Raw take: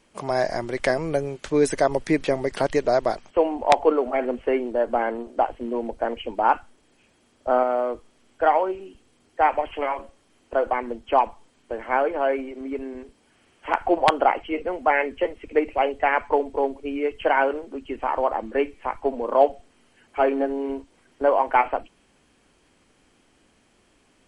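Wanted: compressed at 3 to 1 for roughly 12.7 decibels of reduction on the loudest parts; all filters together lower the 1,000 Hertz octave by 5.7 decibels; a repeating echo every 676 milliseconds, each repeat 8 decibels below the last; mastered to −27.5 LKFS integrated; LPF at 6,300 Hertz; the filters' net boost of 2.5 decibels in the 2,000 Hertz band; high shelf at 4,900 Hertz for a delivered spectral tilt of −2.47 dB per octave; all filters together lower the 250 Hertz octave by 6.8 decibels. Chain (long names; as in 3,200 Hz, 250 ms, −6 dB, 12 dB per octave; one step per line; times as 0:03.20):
low-pass filter 6,300 Hz
parametric band 250 Hz −8.5 dB
parametric band 1,000 Hz −8.5 dB
parametric band 2,000 Hz +5.5 dB
high-shelf EQ 4,900 Hz +4.5 dB
downward compressor 3 to 1, threshold −32 dBFS
repeating echo 676 ms, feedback 40%, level −8 dB
level +7.5 dB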